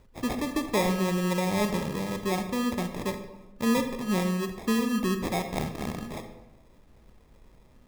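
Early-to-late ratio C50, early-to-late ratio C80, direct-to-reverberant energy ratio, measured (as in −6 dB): 8.5 dB, 10.5 dB, 7.0 dB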